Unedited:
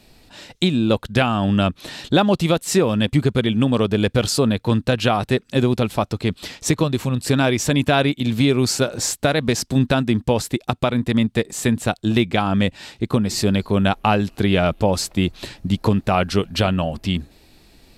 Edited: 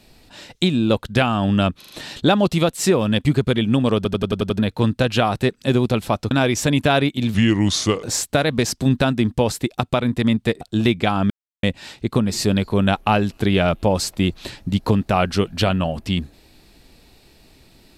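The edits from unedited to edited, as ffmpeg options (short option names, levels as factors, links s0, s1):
-filter_complex "[0:a]asplit=16[s0][s1][s2][s3][s4][s5][s6][s7][s8][s9][s10][s11][s12][s13][s14][s15];[s0]atrim=end=1.822[s16];[s1]atrim=start=1.778:end=1.822[s17];[s2]atrim=start=1.778:end=1.822[s18];[s3]atrim=start=1.778:end=3.932[s19];[s4]atrim=start=3.838:end=3.932[s20];[s5]atrim=start=3.838:end=3.932[s21];[s6]atrim=start=3.838:end=3.932[s22];[s7]atrim=start=3.838:end=3.932[s23];[s8]atrim=start=3.838:end=3.932[s24];[s9]atrim=start=3.838:end=3.932[s25];[s10]atrim=start=4.468:end=6.192[s26];[s11]atrim=start=7.338:end=8.374[s27];[s12]atrim=start=8.37:end=8.93,asetpts=PTS-STARTPTS,asetrate=35721,aresample=44100[s28];[s13]atrim=start=8.926:end=11.512[s29];[s14]atrim=start=11.918:end=12.61,asetpts=PTS-STARTPTS,afade=t=out:st=0.688:d=0.004:c=hsin,apad=pad_dur=0.33[s30];[s15]atrim=start=12.61,asetpts=PTS-STARTPTS,afade=t=in:d=0.004:c=hsin[s31];[s16][s17]acrossfade=d=0.004:c1=hsin:c2=hsin[s32];[s32][s18]acrossfade=d=0.004:c1=hsin:c2=hsin[s33];[s33][s19]acrossfade=d=0.004:c1=hsin:c2=hsin[s34];[s34][s20]acrossfade=d=0.004:c1=hsin:c2=hsin[s35];[s35][s21]acrossfade=d=0.004:c1=hsin:c2=hsin[s36];[s36][s22]acrossfade=d=0.004:c1=hsin:c2=hsin[s37];[s37][s23]acrossfade=d=0.004:c1=hsin:c2=hsin[s38];[s38][s24]acrossfade=d=0.004:c1=hsin:c2=hsin[s39];[s39][s25]acrossfade=d=0.004:c1=hsin:c2=hsin[s40];[s40][s26]acrossfade=d=0.004:c1=hsin:c2=hsin[s41];[s41][s27]acrossfade=d=0.004:c1=hsin:c2=hsin[s42];[s42][s28]acrossfade=d=0.004:c1=hsin:c2=hsin[s43];[s43][s29]acrossfade=d=0.004:c1=hsin:c2=hsin[s44];[s30][s31]concat=n=2:v=0:a=1[s45];[s44][s45]acrossfade=d=0.004:c1=hsin:c2=hsin"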